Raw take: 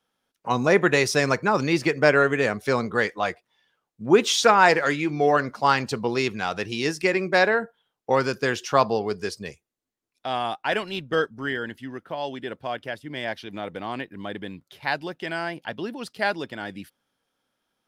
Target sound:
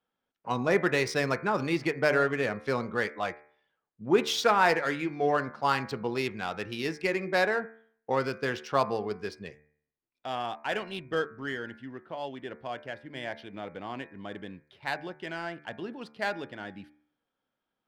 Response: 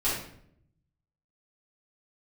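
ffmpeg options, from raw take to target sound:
-af "equalizer=f=6700:w=3:g=-4,adynamicsmooth=sensitivity=4:basefreq=3800,bandreject=f=74.64:t=h:w=4,bandreject=f=149.28:t=h:w=4,bandreject=f=223.92:t=h:w=4,bandreject=f=298.56:t=h:w=4,bandreject=f=373.2:t=h:w=4,bandreject=f=447.84:t=h:w=4,bandreject=f=522.48:t=h:w=4,bandreject=f=597.12:t=h:w=4,bandreject=f=671.76:t=h:w=4,bandreject=f=746.4:t=h:w=4,bandreject=f=821.04:t=h:w=4,bandreject=f=895.68:t=h:w=4,bandreject=f=970.32:t=h:w=4,bandreject=f=1044.96:t=h:w=4,bandreject=f=1119.6:t=h:w=4,bandreject=f=1194.24:t=h:w=4,bandreject=f=1268.88:t=h:w=4,bandreject=f=1343.52:t=h:w=4,bandreject=f=1418.16:t=h:w=4,bandreject=f=1492.8:t=h:w=4,bandreject=f=1567.44:t=h:w=4,bandreject=f=1642.08:t=h:w=4,bandreject=f=1716.72:t=h:w=4,bandreject=f=1791.36:t=h:w=4,bandreject=f=1866:t=h:w=4,bandreject=f=1940.64:t=h:w=4,bandreject=f=2015.28:t=h:w=4,bandreject=f=2089.92:t=h:w=4,bandreject=f=2164.56:t=h:w=4,bandreject=f=2239.2:t=h:w=4,bandreject=f=2313.84:t=h:w=4,bandreject=f=2388.48:t=h:w=4,bandreject=f=2463.12:t=h:w=4,volume=0.501"

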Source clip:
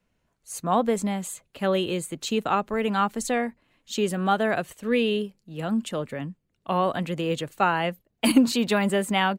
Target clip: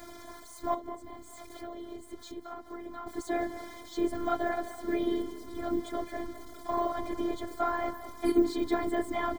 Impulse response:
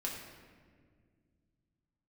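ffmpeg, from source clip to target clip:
-filter_complex "[0:a]aeval=exprs='val(0)+0.5*0.0251*sgn(val(0))':c=same,deesser=0.9,highpass=110,asettb=1/sr,asplit=3[s0][s1][s2];[s0]atrim=end=0.744[s3];[s1]atrim=start=0.74:end=3.07,asetpts=PTS-STARTPTS,afade=t=in:d=0.004:c=qsin,afade=t=out:st=2.326:d=0.004:c=qsin,acompressor=threshold=0.02:ratio=6[s4];[s2]atrim=start=3.066[s5];[s3][s4]acrossfade=d=0.004:c1=hsin:c2=qsin[s6];[s6][s5]acrossfade=d=0.004:c1=qsin:c2=hsin,afftfilt=real='hypot(re,im)*cos(2*PI*random(0))':imag='hypot(re,im)*sin(2*PI*random(1))':win_size=512:overlap=0.75,aeval=exprs='val(0)+0.000794*(sin(2*PI*50*n/s)+sin(2*PI*2*50*n/s)/2+sin(2*PI*3*50*n/s)/3+sin(2*PI*4*50*n/s)/4+sin(2*PI*5*50*n/s)/5)':c=same,afftfilt=real='hypot(re,im)*cos(PI*b)':imag='0':win_size=512:overlap=0.75,asuperstop=centerf=2700:order=4:qfactor=3.4,asplit=2[s7][s8];[s8]adelay=207,lowpass=f=1900:p=1,volume=0.282,asplit=2[s9][s10];[s10]adelay=207,lowpass=f=1900:p=1,volume=0.47,asplit=2[s11][s12];[s12]adelay=207,lowpass=f=1900:p=1,volume=0.47,asplit=2[s13][s14];[s14]adelay=207,lowpass=f=1900:p=1,volume=0.47,asplit=2[s15][s16];[s16]adelay=207,lowpass=f=1900:p=1,volume=0.47[s17];[s7][s9][s11][s13][s15][s17]amix=inputs=6:normalize=0,volume=1.68"

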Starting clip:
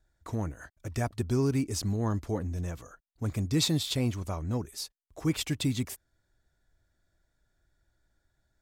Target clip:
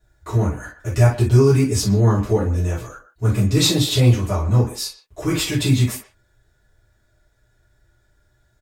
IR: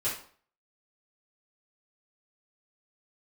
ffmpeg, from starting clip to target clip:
-filter_complex "[0:a]asplit=2[s0][s1];[s1]adelay=120,highpass=300,lowpass=3400,asoftclip=type=hard:threshold=0.0596,volume=0.224[s2];[s0][s2]amix=inputs=2:normalize=0[s3];[1:a]atrim=start_sample=2205,atrim=end_sample=3528[s4];[s3][s4]afir=irnorm=-1:irlink=0,volume=2"

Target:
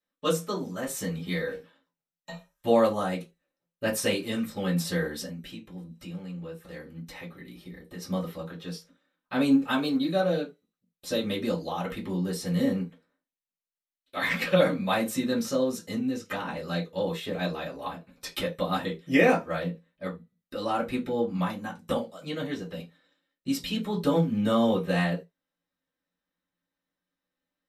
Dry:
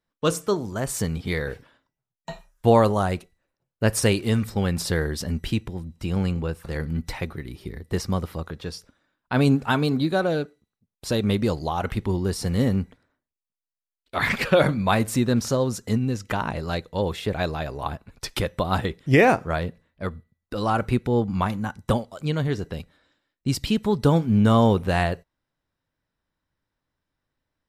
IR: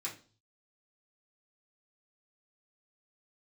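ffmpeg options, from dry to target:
-filter_complex "[0:a]asettb=1/sr,asplit=3[s0][s1][s2];[s0]atrim=end=5.264[s3];[s1]atrim=start=5.26:end=8.02,asetpts=PTS-STARTPTS,afade=t=in:d=0.004:c=qsin,afade=t=out:st=2.756:d=0.004:c=qsin,acompressor=threshold=0.0251:ratio=6[s4];[s2]atrim=start=8.016[s5];[s3][s4]acrossfade=d=0.004:c1=hsin:c2=qsin[s6];[s6][s5]acrossfade=d=0.004:c1=qsin:c2=hsin[s7];[1:a]atrim=start_sample=2205,atrim=end_sample=6615,asetrate=70560,aresample=44100[s8];[s7][s8]afir=irnorm=-1:irlink=0"

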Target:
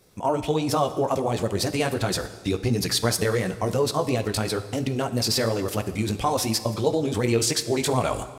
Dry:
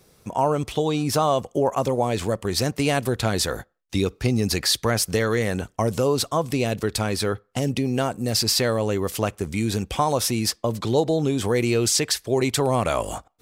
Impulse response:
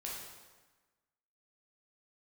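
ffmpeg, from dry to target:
-filter_complex "[0:a]flanger=delay=16:depth=4.2:speed=1.8,atempo=1.6,asplit=2[s0][s1];[1:a]atrim=start_sample=2205,asetrate=34398,aresample=44100[s2];[s1][s2]afir=irnorm=-1:irlink=0,volume=0.299[s3];[s0][s3]amix=inputs=2:normalize=0"

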